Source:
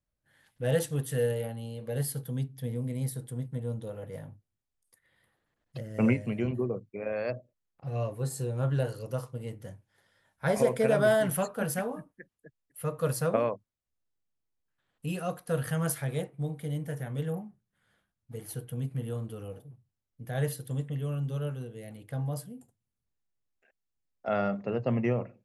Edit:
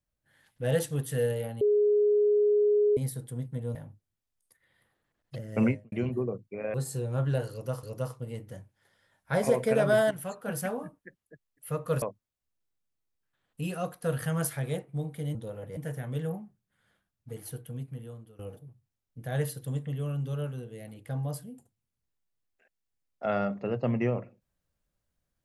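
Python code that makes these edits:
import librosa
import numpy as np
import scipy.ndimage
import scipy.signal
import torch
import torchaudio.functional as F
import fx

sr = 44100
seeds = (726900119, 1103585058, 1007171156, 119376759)

y = fx.studio_fade_out(x, sr, start_s=6.04, length_s=0.3)
y = fx.edit(y, sr, fx.bleep(start_s=1.61, length_s=1.36, hz=416.0, db=-20.0),
    fx.move(start_s=3.75, length_s=0.42, to_s=16.8),
    fx.cut(start_s=7.16, length_s=1.03),
    fx.repeat(start_s=8.96, length_s=0.32, count=2),
    fx.fade_in_from(start_s=11.24, length_s=0.62, floor_db=-13.0),
    fx.cut(start_s=13.15, length_s=0.32),
    fx.fade_out_to(start_s=18.33, length_s=1.09, floor_db=-17.5), tone=tone)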